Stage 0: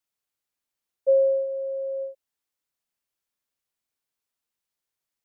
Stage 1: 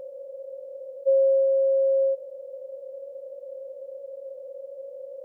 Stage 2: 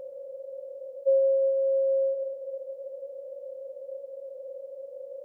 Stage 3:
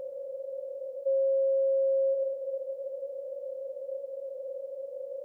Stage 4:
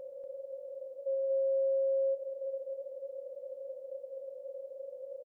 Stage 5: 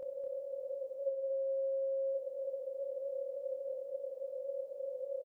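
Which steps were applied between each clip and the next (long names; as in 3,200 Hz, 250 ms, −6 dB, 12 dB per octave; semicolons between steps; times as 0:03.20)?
compressor on every frequency bin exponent 0.2; level −2 dB
convolution reverb RT60 2.9 s, pre-delay 43 ms, DRR 9.5 dB; level −1.5 dB
brickwall limiter −24.5 dBFS, peak gain reduction 8.5 dB; level +2 dB
slap from a distant wall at 41 metres, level −6 dB; level −6.5 dB
double-tracking delay 27 ms −3 dB; level +1 dB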